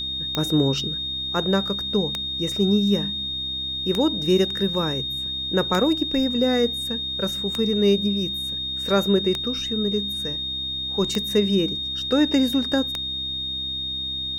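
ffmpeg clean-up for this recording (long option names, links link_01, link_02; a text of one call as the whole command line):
ffmpeg -i in.wav -af "adeclick=threshold=4,bandreject=frequency=65.9:width_type=h:width=4,bandreject=frequency=131.8:width_type=h:width=4,bandreject=frequency=197.7:width_type=h:width=4,bandreject=frequency=263.6:width_type=h:width=4,bandreject=frequency=329.5:width_type=h:width=4,bandreject=frequency=3700:width=30,agate=range=-21dB:threshold=-21dB" out.wav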